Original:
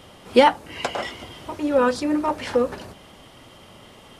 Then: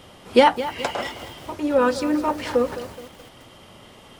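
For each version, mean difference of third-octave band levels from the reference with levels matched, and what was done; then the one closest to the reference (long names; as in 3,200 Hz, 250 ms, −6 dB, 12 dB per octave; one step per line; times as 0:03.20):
2.0 dB: feedback echo at a low word length 212 ms, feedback 55%, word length 6 bits, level −13 dB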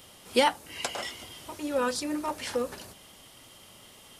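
4.5 dB: first-order pre-emphasis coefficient 0.8
level +4 dB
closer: first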